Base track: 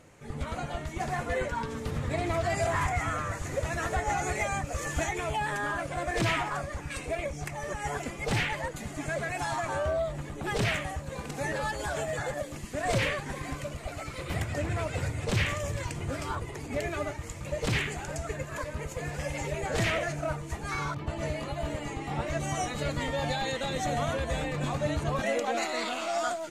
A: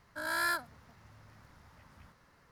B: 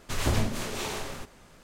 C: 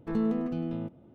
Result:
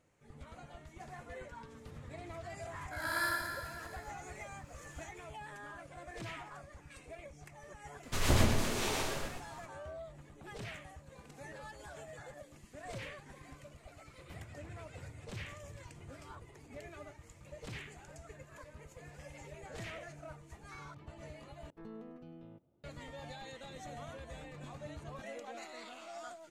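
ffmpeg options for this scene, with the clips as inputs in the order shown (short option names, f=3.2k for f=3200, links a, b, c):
-filter_complex "[0:a]volume=-17dB[a];[1:a]aecho=1:1:50|105|165.5|232|305.3|385.8|474.4|571.8|679|796.9:0.794|0.631|0.501|0.398|0.316|0.251|0.2|0.158|0.126|0.1[b];[2:a]aecho=1:1:120:0.668[c];[3:a]equalizer=f=220:t=o:w=0.69:g=-7[d];[a]asplit=2[e][f];[e]atrim=end=21.704[g];[d]atrim=end=1.14,asetpts=PTS-STARTPTS,volume=-16.5dB[h];[f]atrim=start=22.836[i];[b]atrim=end=2.51,asetpts=PTS-STARTPTS,volume=-6dB,afade=t=in:d=0.004:c=hsin,afade=t=out:st=2.506:d=0.004:c=hsin,adelay=2750[j];[c]atrim=end=1.63,asetpts=PTS-STARTPTS,volume=-2.5dB,afade=t=in:d=0.004:c=hsin,afade=t=out:st=1.626:d=0.004:c=hsin,adelay=8030[k];[g][h]acrossfade=d=0.004:c1=hsin:c2=hsin[l];[l][i]acrossfade=d=0.004:c1=hsin:c2=hsin[m];[m][j][k]amix=inputs=3:normalize=0"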